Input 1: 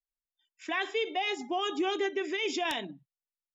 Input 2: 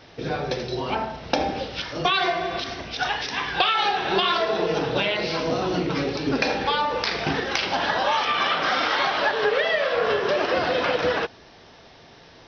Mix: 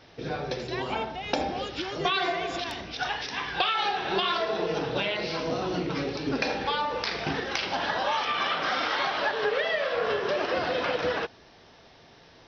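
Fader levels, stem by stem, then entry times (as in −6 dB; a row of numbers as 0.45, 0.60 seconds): −6.0, −5.0 decibels; 0.00, 0.00 seconds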